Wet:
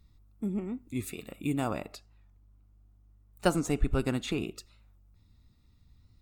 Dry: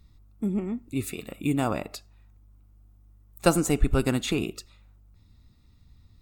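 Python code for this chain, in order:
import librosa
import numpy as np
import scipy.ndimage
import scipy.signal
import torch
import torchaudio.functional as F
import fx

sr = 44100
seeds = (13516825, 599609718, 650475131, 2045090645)

y = fx.high_shelf(x, sr, hz=7100.0, db=-7.5, at=(1.92, 4.58))
y = fx.record_warp(y, sr, rpm=45.0, depth_cents=100.0)
y = y * 10.0 ** (-5.0 / 20.0)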